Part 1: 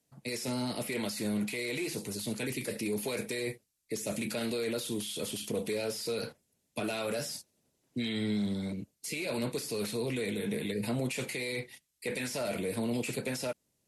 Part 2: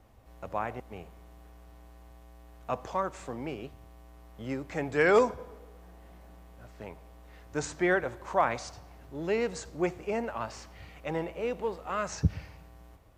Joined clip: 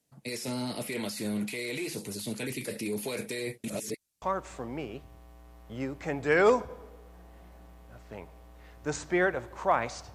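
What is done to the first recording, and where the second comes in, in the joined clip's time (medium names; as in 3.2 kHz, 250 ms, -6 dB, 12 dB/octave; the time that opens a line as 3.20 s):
part 1
3.64–4.22 s: reverse
4.22 s: go over to part 2 from 2.91 s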